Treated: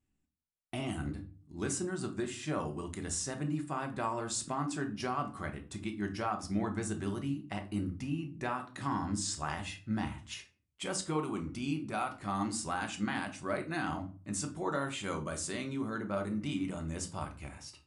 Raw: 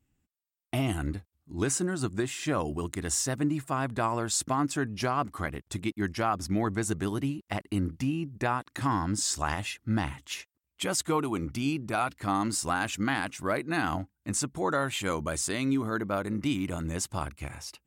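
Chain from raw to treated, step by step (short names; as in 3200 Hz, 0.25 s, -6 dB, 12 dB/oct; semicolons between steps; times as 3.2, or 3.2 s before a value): brick-wall FIR low-pass 11000 Hz; shoebox room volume 290 m³, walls furnished, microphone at 1.1 m; gain -8 dB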